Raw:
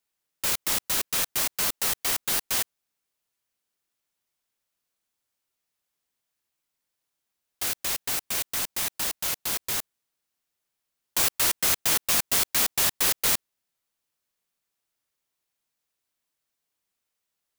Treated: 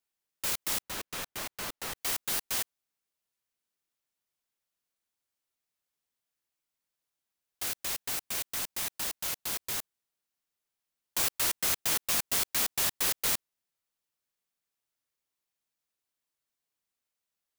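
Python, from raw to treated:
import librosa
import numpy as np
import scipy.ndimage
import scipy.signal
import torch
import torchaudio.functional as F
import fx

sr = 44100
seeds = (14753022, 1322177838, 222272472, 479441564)

y = fx.high_shelf(x, sr, hz=3800.0, db=-9.5, at=(0.82, 1.96))
y = y * 10.0 ** (-5.5 / 20.0)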